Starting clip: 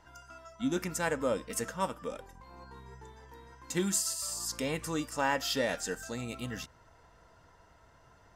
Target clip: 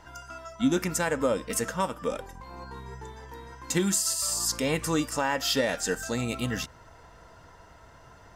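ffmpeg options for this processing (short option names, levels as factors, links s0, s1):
-af "alimiter=limit=0.0668:level=0:latency=1:release=240,volume=2.66"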